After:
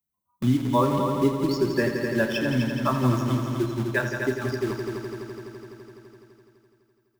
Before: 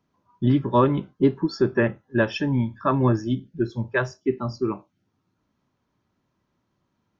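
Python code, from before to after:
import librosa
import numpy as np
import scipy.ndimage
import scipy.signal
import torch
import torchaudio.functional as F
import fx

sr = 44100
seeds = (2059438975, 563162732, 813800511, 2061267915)

p1 = fx.bin_expand(x, sr, power=1.5)
p2 = fx.high_shelf(p1, sr, hz=4900.0, db=10.5)
p3 = fx.hum_notches(p2, sr, base_hz=50, count=2)
p4 = fx.comb_fb(p3, sr, f0_hz=85.0, decay_s=0.62, harmonics='odd', damping=0.0, mix_pct=50)
p5 = fx.quant_dither(p4, sr, seeds[0], bits=6, dither='none')
p6 = p4 + F.gain(torch.from_numpy(p5), -4.5).numpy()
p7 = fx.doubler(p6, sr, ms=32.0, db=-11)
p8 = p7 + fx.echo_heads(p7, sr, ms=84, heads='all three', feedback_pct=65, wet_db=-11.0, dry=0)
y = fx.band_squash(p8, sr, depth_pct=40)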